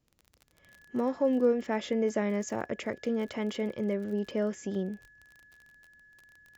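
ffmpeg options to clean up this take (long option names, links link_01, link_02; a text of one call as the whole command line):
ffmpeg -i in.wav -af "adeclick=threshold=4,bandreject=frequency=1700:width=30" out.wav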